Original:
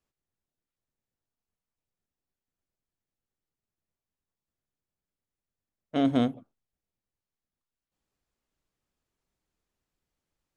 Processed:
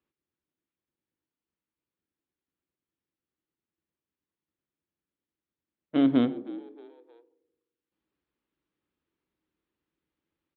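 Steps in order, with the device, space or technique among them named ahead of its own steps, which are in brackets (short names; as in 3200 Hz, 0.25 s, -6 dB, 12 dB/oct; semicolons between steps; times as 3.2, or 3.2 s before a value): frequency-shifting delay pedal into a guitar cabinet (frequency-shifting echo 0.313 s, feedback 47%, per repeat +75 Hz, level -21 dB; speaker cabinet 79–3700 Hz, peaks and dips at 110 Hz -7 dB, 320 Hz +9 dB, 690 Hz -7 dB); narrowing echo 85 ms, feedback 64%, band-pass 360 Hz, level -15 dB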